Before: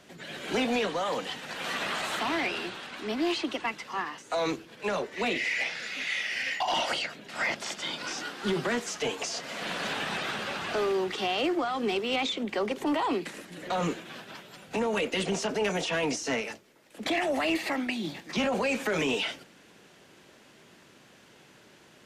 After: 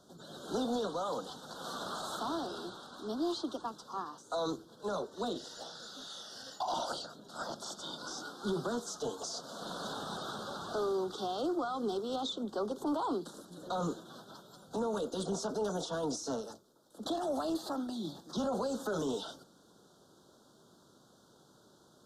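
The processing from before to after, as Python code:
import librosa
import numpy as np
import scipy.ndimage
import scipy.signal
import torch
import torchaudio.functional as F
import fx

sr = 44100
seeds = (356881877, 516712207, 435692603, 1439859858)

y = scipy.signal.sosfilt(scipy.signal.cheby1(3, 1.0, [1400.0, 3600.0], 'bandstop', fs=sr, output='sos'), x)
y = F.gain(torch.from_numpy(y), -5.0).numpy()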